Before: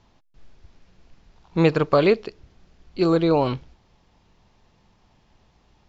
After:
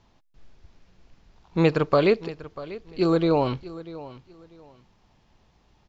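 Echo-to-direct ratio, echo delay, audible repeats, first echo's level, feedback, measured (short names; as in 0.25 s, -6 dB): -17.0 dB, 0.642 s, 2, -17.0 dB, 24%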